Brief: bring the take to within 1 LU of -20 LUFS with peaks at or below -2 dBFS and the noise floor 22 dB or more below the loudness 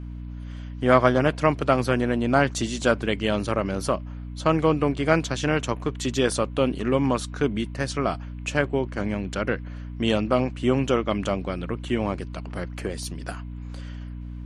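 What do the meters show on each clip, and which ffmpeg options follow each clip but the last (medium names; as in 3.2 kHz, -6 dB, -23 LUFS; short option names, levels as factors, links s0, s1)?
hum 60 Hz; highest harmonic 300 Hz; hum level -32 dBFS; loudness -24.5 LUFS; peak level -2.5 dBFS; loudness target -20.0 LUFS
-> -af "bandreject=f=60:t=h:w=6,bandreject=f=120:t=h:w=6,bandreject=f=180:t=h:w=6,bandreject=f=240:t=h:w=6,bandreject=f=300:t=h:w=6"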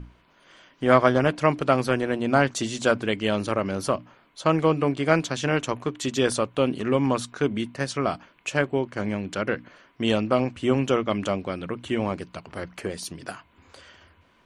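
hum not found; loudness -25.0 LUFS; peak level -2.5 dBFS; loudness target -20.0 LUFS
-> -af "volume=1.78,alimiter=limit=0.794:level=0:latency=1"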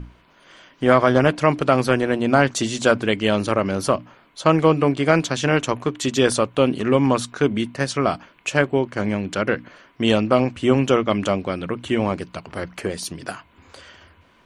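loudness -20.5 LUFS; peak level -2.0 dBFS; noise floor -56 dBFS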